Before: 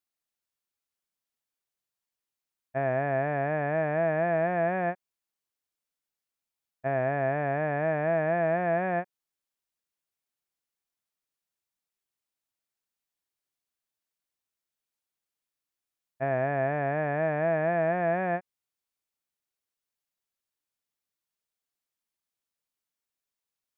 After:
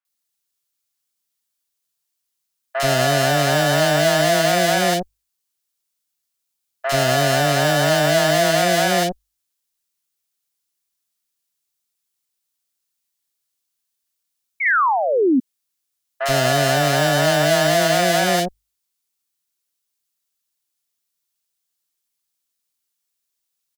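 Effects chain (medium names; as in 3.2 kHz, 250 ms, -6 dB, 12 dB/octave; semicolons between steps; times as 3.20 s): in parallel at -8 dB: fuzz box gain 40 dB, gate -50 dBFS; on the sum: treble shelf 2.3 kHz +10.5 dB; hum notches 50/100 Hz; painted sound fall, 14.60–15.32 s, 240–2300 Hz -17 dBFS; three bands offset in time mids, highs, lows 50/80 ms, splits 660/2100 Hz; trim +2.5 dB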